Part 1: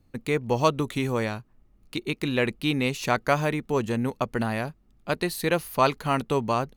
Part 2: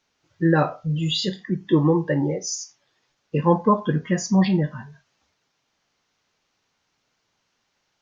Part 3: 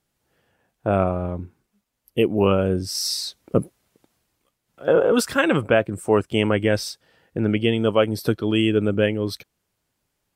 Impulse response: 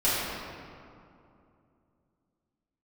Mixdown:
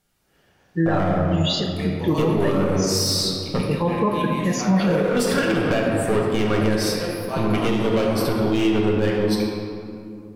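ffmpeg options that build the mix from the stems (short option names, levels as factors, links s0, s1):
-filter_complex "[0:a]equalizer=f=11000:t=o:w=0.23:g=12,acontrast=39,adelay=1500,volume=0.1,asplit=2[s0][s1];[s1]volume=0.531[s2];[1:a]bandreject=f=50:t=h:w=6,bandreject=f=100:t=h:w=6,bandreject=f=150:t=h:w=6,adelay=350,volume=0.891,asplit=2[s3][s4];[s4]volume=0.126[s5];[2:a]equalizer=f=590:t=o:w=0.77:g=-3,acompressor=threshold=0.0562:ratio=1.5,volume=11.9,asoftclip=hard,volume=0.0841,volume=1.12,asplit=2[s6][s7];[s7]volume=0.335[s8];[3:a]atrim=start_sample=2205[s9];[s2][s5][s8]amix=inputs=3:normalize=0[s10];[s10][s9]afir=irnorm=-1:irlink=0[s11];[s0][s3][s6][s11]amix=inputs=4:normalize=0,alimiter=limit=0.282:level=0:latency=1:release=77"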